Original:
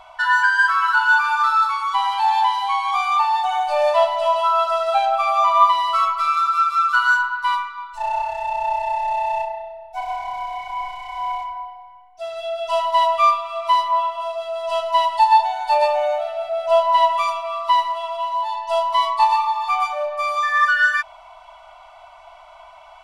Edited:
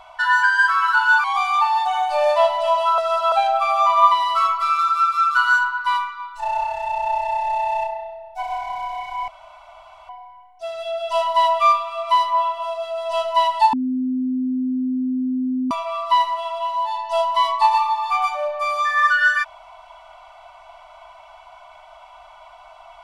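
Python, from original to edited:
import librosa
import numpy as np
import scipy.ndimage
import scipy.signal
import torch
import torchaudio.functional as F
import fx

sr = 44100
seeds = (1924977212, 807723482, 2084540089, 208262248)

y = fx.edit(x, sr, fx.cut(start_s=1.24, length_s=1.58),
    fx.reverse_span(start_s=4.56, length_s=0.34),
    fx.room_tone_fill(start_s=10.86, length_s=0.81),
    fx.bleep(start_s=15.31, length_s=1.98, hz=256.0, db=-19.0), tone=tone)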